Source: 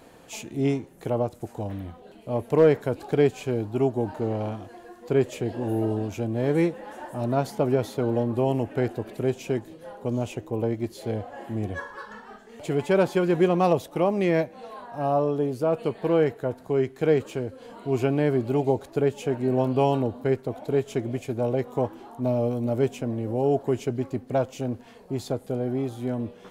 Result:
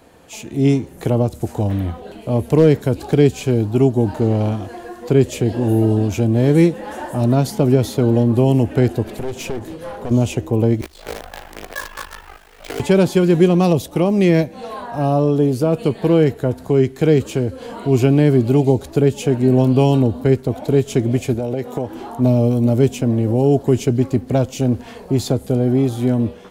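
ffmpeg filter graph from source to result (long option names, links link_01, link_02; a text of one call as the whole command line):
ffmpeg -i in.wav -filter_complex "[0:a]asettb=1/sr,asplit=3[link_01][link_02][link_03];[link_01]atrim=end=9.034[link_04];[link_02]atrim=start=9.03:end=10.11,asetpts=PTS-STARTPTS,afade=type=in:duration=0.004:curve=qsin,afade=type=out:start_time=1.076:duration=0.004:curve=qsin,acompressor=threshold=-30dB:ratio=2.5:attack=3.2:release=140:knee=1:detection=peak,aeval=exprs='clip(val(0),-1,0.0075)':channel_layout=same[link_05];[link_03]atrim=start=10.106[link_06];[link_04][link_05]acrossfade=duration=0.004:curve1=hsin:curve2=qsin[link_07];[link_07][link_06]acrossfade=duration=0.004:curve1=qsin:curve2=hsin,asettb=1/sr,asplit=3[link_08][link_09][link_10];[link_08]atrim=end=10.814[link_11];[link_09]atrim=start=10.81:end=12.8,asetpts=PTS-STARTPTS,afade=type=in:duration=0.004:curve=qsin,afade=type=out:start_time=1.986:duration=0.004:curve=qsin,highpass=760,lowpass=3600,acrusher=bits=7:dc=4:mix=0:aa=0.000001,aeval=exprs='val(0)*sin(2*PI*26*n/s)':channel_layout=same[link_12];[link_10]atrim=start=12.796[link_13];[link_11][link_12]acrossfade=duration=0.004:curve1=hsin:curve2=qsin[link_14];[link_14][link_13]acrossfade=duration=0.004:curve1=qsin:curve2=hsin,asettb=1/sr,asplit=3[link_15][link_16][link_17];[link_15]atrim=end=21.344[link_18];[link_16]atrim=start=21.34:end=21.95,asetpts=PTS-STARTPTS,afade=type=in:duration=0.004:curve=qsin,afade=type=out:start_time=0.606:duration=0.004:curve=qsin,highpass=frequency=160:poles=1,equalizer=frequency=1100:width_type=o:width=0.24:gain=-8.5,acompressor=threshold=-29dB:ratio=4:attack=3.2:release=140:knee=1:detection=peak[link_19];[link_17]atrim=start=21.946[link_20];[link_18][link_19]acrossfade=duration=0.004:curve1=hsin:curve2=qsin[link_21];[link_21][link_20]acrossfade=duration=0.004:curve1=qsin:curve2=hsin,acrossover=split=340|3000[link_22][link_23][link_24];[link_23]acompressor=threshold=-42dB:ratio=2[link_25];[link_22][link_25][link_24]amix=inputs=3:normalize=0,equalizer=frequency=72:width=4.7:gain=12,dynaudnorm=framelen=370:gausssize=3:maxgain=12dB,volume=1.5dB" out.wav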